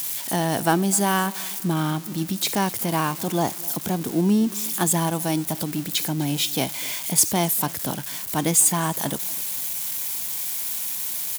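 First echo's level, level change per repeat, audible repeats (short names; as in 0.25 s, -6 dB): -21.0 dB, -8.0 dB, 2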